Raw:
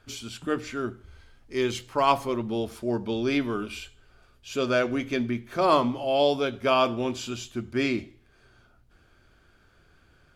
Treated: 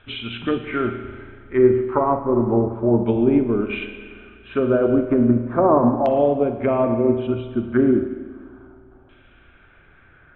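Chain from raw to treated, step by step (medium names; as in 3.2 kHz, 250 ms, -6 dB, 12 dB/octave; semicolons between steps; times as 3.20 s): 6.99–7.63 s: resonances exaggerated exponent 2; low-pass that closes with the level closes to 470 Hz, closed at -23.5 dBFS; brick-wall FIR low-pass 4.1 kHz; LFO low-pass saw down 0.33 Hz 860–3000 Hz; in parallel at +2 dB: peak limiter -22 dBFS, peak gain reduction 9 dB; on the sum: spring tank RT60 2.1 s, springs 34/47 ms, chirp 25 ms, DRR 5.5 dB; upward expansion 1.5:1, over -29 dBFS; trim +5.5 dB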